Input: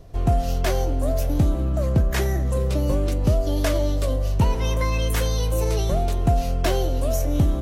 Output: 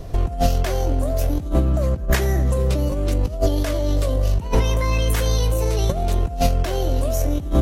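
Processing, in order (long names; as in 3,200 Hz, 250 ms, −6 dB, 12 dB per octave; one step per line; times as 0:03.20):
compressor whose output falls as the input rises −24 dBFS, ratio −0.5
level +6.5 dB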